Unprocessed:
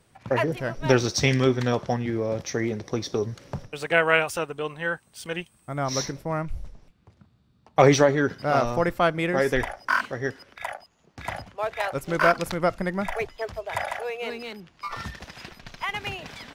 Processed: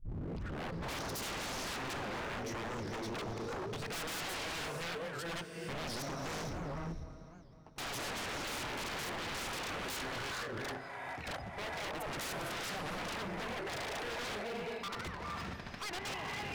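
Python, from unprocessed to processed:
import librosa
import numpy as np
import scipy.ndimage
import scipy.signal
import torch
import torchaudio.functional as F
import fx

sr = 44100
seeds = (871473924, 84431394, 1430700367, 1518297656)

p1 = fx.tape_start_head(x, sr, length_s=0.9)
p2 = fx.highpass(p1, sr, hz=47.0, slope=6)
p3 = fx.high_shelf(p2, sr, hz=3000.0, db=-10.5)
p4 = fx.hum_notches(p3, sr, base_hz=50, count=2)
p5 = fx.level_steps(p4, sr, step_db=12)
p6 = 10.0 ** (-25.0 / 20.0) * np.tanh(p5 / 10.0 ** (-25.0 / 20.0))
p7 = p6 + fx.echo_heads(p6, sr, ms=252, heads='first and second', feedback_pct=42, wet_db=-20.0, dry=0)
p8 = fx.rev_gated(p7, sr, seeds[0], gate_ms=490, shape='rising', drr_db=4.0)
p9 = 10.0 ** (-38.0 / 20.0) * (np.abs((p8 / 10.0 ** (-38.0 / 20.0) + 3.0) % 4.0 - 2.0) - 1.0)
p10 = fx.record_warp(p9, sr, rpm=78.0, depth_cents=250.0)
y = F.gain(torch.from_numpy(p10), 3.0).numpy()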